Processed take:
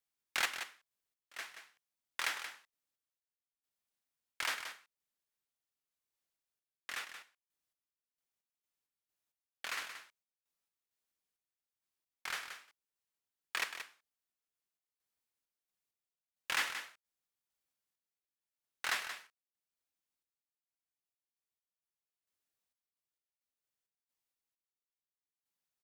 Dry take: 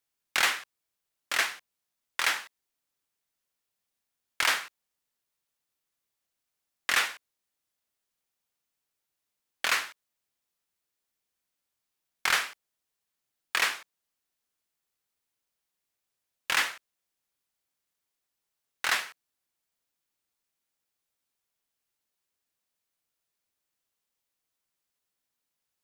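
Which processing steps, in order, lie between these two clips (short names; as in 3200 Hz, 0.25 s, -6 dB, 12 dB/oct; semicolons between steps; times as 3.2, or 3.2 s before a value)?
random-step tremolo 4.4 Hz, depth 95%; on a send: echo 0.178 s -9.5 dB; on the sum: gain -6 dB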